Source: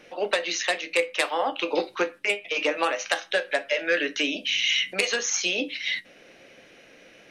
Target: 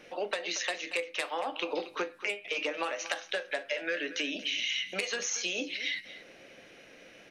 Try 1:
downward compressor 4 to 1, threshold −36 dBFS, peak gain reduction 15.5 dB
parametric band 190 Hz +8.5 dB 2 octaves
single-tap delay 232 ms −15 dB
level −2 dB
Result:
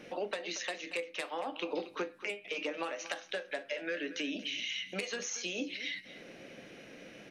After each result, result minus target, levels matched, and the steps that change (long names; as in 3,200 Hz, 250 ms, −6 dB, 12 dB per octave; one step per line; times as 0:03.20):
downward compressor: peak gain reduction +5.5 dB; 250 Hz band +5.0 dB
change: downward compressor 4 to 1, threshold −28.5 dBFS, peak gain reduction 9.5 dB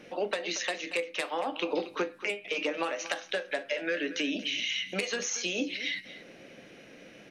250 Hz band +5.0 dB
remove: parametric band 190 Hz +8.5 dB 2 octaves